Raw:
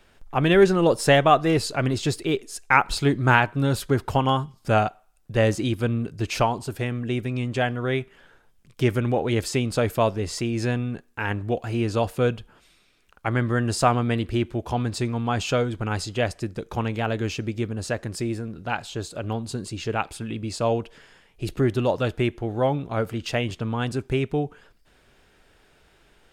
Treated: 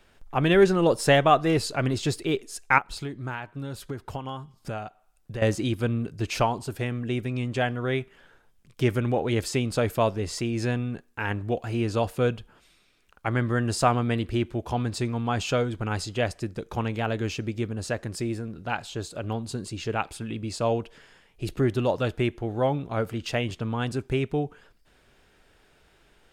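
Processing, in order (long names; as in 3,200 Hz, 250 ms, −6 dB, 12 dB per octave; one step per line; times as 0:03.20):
0:02.78–0:05.42: downward compressor 4 to 1, threshold −31 dBFS, peak gain reduction 15.5 dB
level −2 dB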